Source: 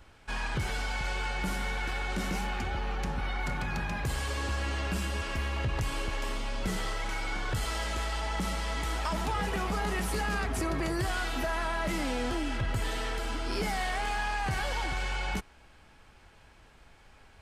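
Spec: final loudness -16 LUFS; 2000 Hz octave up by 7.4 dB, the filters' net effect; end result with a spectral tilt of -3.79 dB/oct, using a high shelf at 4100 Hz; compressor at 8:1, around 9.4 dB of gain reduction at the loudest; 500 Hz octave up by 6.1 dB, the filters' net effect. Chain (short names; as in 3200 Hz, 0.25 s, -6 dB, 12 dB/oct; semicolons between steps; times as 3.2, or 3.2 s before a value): bell 500 Hz +7.5 dB; bell 2000 Hz +8 dB; high shelf 4100 Hz +3.5 dB; compressor 8:1, threshold -33 dBFS; gain +20 dB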